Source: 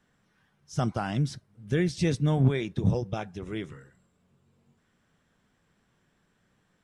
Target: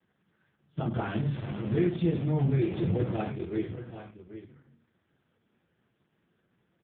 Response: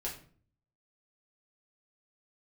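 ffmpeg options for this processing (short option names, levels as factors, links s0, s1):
-filter_complex "[0:a]asettb=1/sr,asplit=3[s0][s1][s2];[s0]atrim=end=0.944[s3];[s1]atrim=start=0.94:end=3.26,asetpts=PTS-STARTPTS,afade=t=in:d=0.004:c=qsin,afade=t=out:st=2.316:d=0.004:c=qsin,aeval=exprs='val(0)+0.5*0.0398*sgn(val(0))':c=same[s4];[s2]atrim=start=3.256[s5];[s3][s4]acrossfade=d=0.004:c1=hsin:c2=qsin[s6];[s6][s5]acrossfade=d=0.004:c1=qsin:c2=hsin,acompressor=threshold=0.0447:ratio=2.5,aecho=1:1:785:0.237[s7];[1:a]atrim=start_sample=2205,atrim=end_sample=6174,asetrate=40131,aresample=44100[s8];[s7][s8]afir=irnorm=-1:irlink=0,volume=0.891" -ar 8000 -c:a libopencore_amrnb -b:a 4750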